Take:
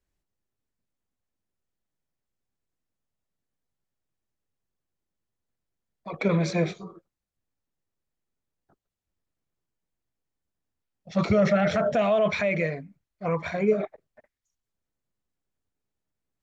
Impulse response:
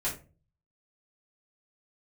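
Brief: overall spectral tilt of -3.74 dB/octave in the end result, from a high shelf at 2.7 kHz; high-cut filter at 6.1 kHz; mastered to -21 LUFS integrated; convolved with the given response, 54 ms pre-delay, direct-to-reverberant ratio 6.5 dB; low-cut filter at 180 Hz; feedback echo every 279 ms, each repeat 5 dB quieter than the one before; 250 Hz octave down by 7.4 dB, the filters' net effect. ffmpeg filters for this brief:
-filter_complex "[0:a]highpass=180,lowpass=6100,equalizer=f=250:t=o:g=-8,highshelf=f=2700:g=5,aecho=1:1:279|558|837|1116|1395|1674|1953:0.562|0.315|0.176|0.0988|0.0553|0.031|0.0173,asplit=2[s0][s1];[1:a]atrim=start_sample=2205,adelay=54[s2];[s1][s2]afir=irnorm=-1:irlink=0,volume=0.251[s3];[s0][s3]amix=inputs=2:normalize=0,volume=1.68"

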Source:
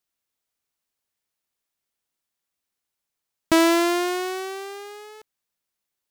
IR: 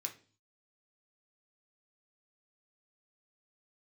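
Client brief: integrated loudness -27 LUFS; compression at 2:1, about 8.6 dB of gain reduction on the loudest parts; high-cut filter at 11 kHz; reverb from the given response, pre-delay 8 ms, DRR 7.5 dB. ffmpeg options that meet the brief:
-filter_complex "[0:a]lowpass=11000,acompressor=threshold=0.0316:ratio=2,asplit=2[s0][s1];[1:a]atrim=start_sample=2205,adelay=8[s2];[s1][s2]afir=irnorm=-1:irlink=0,volume=0.501[s3];[s0][s3]amix=inputs=2:normalize=0,volume=1.33"

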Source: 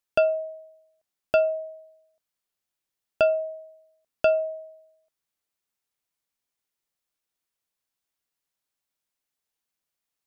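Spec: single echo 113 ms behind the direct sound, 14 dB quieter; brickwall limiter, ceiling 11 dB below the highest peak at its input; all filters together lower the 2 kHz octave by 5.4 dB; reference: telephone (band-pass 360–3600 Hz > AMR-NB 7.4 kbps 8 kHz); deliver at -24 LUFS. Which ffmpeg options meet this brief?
-af "equalizer=f=2000:t=o:g=-8,alimiter=limit=0.0708:level=0:latency=1,highpass=360,lowpass=3600,aecho=1:1:113:0.2,volume=2.99" -ar 8000 -c:a libopencore_amrnb -b:a 7400

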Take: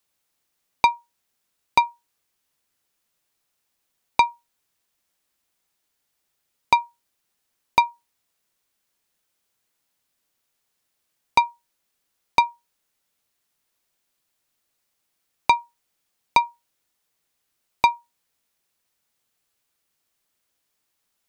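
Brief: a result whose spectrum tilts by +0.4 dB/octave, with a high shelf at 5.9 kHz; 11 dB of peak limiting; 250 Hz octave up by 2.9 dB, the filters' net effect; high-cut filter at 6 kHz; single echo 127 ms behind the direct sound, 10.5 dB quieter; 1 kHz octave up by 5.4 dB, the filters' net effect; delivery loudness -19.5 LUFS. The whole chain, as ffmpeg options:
-af "lowpass=6000,equalizer=f=250:t=o:g=3.5,equalizer=f=1000:t=o:g=5.5,highshelf=f=5900:g=-3.5,alimiter=limit=0.299:level=0:latency=1,aecho=1:1:127:0.299,volume=2.11"

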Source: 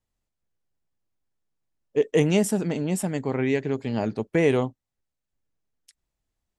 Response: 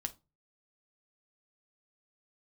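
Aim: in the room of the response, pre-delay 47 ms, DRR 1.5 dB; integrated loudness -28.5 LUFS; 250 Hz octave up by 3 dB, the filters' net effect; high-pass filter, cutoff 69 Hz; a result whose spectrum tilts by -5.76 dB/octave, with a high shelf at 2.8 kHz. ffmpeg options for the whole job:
-filter_complex "[0:a]highpass=69,equalizer=f=250:t=o:g=4,highshelf=f=2800:g=6,asplit=2[s0][s1];[1:a]atrim=start_sample=2205,adelay=47[s2];[s1][s2]afir=irnorm=-1:irlink=0,volume=0.944[s3];[s0][s3]amix=inputs=2:normalize=0,volume=0.376"

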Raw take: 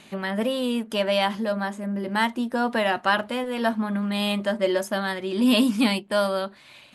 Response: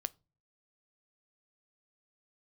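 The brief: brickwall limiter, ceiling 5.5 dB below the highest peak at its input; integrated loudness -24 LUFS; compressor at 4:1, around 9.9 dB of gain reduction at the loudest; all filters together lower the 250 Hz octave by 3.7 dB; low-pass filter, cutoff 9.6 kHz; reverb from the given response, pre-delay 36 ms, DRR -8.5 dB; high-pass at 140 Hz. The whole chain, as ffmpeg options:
-filter_complex "[0:a]highpass=140,lowpass=9600,equalizer=f=250:t=o:g=-3.5,acompressor=threshold=0.0316:ratio=4,alimiter=limit=0.0708:level=0:latency=1,asplit=2[s0][s1];[1:a]atrim=start_sample=2205,adelay=36[s2];[s1][s2]afir=irnorm=-1:irlink=0,volume=2.99[s3];[s0][s3]amix=inputs=2:normalize=0,volume=1.12"

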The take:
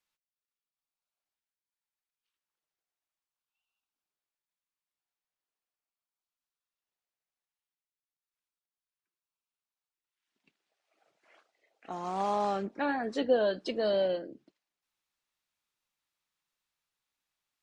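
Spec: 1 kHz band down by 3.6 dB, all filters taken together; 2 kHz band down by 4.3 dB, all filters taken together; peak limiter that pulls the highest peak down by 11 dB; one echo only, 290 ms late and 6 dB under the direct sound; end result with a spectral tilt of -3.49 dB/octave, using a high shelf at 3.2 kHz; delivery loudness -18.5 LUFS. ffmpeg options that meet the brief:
-af "equalizer=f=1000:t=o:g=-4.5,equalizer=f=2000:t=o:g=-6.5,highshelf=f=3200:g=8.5,alimiter=level_in=1.41:limit=0.0631:level=0:latency=1,volume=0.708,aecho=1:1:290:0.501,volume=7.5"

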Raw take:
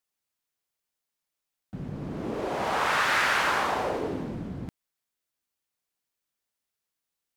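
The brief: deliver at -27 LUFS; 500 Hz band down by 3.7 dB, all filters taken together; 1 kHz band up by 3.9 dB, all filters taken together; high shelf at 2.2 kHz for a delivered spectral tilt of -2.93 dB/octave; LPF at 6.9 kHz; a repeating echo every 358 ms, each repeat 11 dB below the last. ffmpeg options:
-af "lowpass=6900,equalizer=f=500:t=o:g=-7,equalizer=f=1000:t=o:g=5.5,highshelf=f=2200:g=5,aecho=1:1:358|716|1074:0.282|0.0789|0.0221,volume=0.631"

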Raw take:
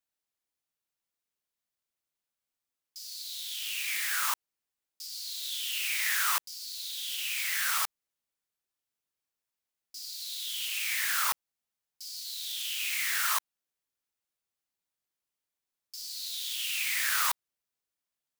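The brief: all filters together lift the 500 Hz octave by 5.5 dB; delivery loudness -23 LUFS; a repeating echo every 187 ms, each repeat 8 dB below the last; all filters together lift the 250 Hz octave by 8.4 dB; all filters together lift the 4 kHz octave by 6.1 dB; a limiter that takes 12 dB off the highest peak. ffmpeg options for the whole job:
-af "equalizer=f=250:t=o:g=9,equalizer=f=500:t=o:g=5.5,equalizer=f=4000:t=o:g=7.5,alimiter=level_in=1.19:limit=0.0631:level=0:latency=1,volume=0.841,aecho=1:1:187|374|561|748|935:0.398|0.159|0.0637|0.0255|0.0102,volume=2.99"

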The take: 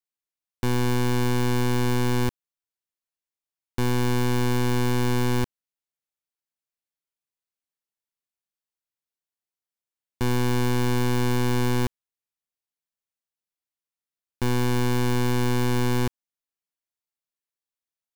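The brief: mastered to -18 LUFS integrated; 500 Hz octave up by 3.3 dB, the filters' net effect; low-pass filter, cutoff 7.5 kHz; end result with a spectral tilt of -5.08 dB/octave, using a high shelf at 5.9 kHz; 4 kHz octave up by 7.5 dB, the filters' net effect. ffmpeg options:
-af "lowpass=7500,equalizer=f=500:t=o:g=4.5,equalizer=f=4000:t=o:g=7,highshelf=f=5900:g=8.5,volume=1.78"

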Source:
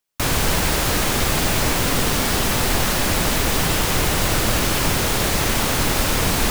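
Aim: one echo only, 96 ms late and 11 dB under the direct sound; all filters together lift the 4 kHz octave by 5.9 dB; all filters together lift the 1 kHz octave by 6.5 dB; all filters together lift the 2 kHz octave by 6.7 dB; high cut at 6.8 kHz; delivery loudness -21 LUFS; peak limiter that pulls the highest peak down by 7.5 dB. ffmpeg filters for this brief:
-af "lowpass=6800,equalizer=f=1000:t=o:g=6.5,equalizer=f=2000:t=o:g=5,equalizer=f=4000:t=o:g=6,alimiter=limit=0.282:level=0:latency=1,aecho=1:1:96:0.282,volume=0.794"

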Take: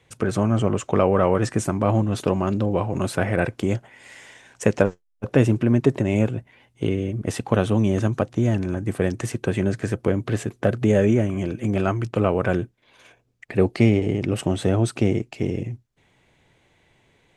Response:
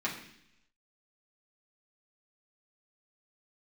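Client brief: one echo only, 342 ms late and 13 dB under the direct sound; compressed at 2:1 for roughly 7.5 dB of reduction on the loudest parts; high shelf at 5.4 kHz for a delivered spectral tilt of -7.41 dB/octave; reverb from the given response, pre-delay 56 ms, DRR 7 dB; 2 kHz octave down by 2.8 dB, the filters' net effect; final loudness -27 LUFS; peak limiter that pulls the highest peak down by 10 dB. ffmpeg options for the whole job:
-filter_complex "[0:a]equalizer=f=2000:t=o:g=-4.5,highshelf=f=5400:g=5,acompressor=threshold=0.0562:ratio=2,alimiter=limit=0.133:level=0:latency=1,aecho=1:1:342:0.224,asplit=2[s0][s1];[1:a]atrim=start_sample=2205,adelay=56[s2];[s1][s2]afir=irnorm=-1:irlink=0,volume=0.211[s3];[s0][s3]amix=inputs=2:normalize=0,volume=1.26"

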